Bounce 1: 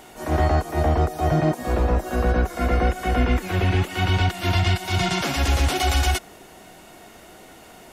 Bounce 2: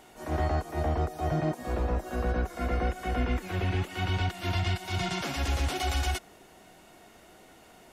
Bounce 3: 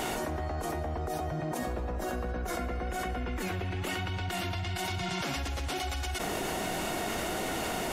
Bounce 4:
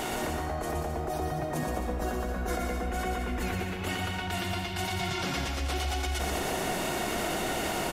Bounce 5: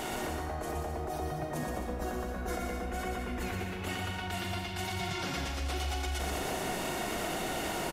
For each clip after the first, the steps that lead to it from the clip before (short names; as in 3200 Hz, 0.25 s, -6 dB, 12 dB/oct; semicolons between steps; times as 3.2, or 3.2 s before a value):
high shelf 11000 Hz -3.5 dB; gain -8.5 dB
fast leveller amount 100%; gain -8.5 dB
bouncing-ball echo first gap 0.12 s, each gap 0.7×, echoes 5
doubler 41 ms -10.5 dB; gain -4 dB